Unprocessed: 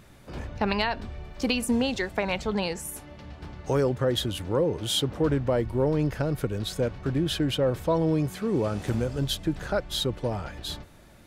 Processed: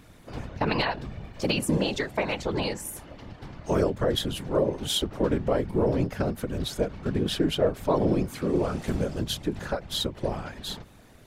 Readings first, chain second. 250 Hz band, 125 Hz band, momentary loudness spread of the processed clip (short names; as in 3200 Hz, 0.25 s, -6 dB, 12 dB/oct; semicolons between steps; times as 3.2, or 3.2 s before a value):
-0.5 dB, -2.0 dB, 12 LU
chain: whisperiser; ending taper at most 230 dB/s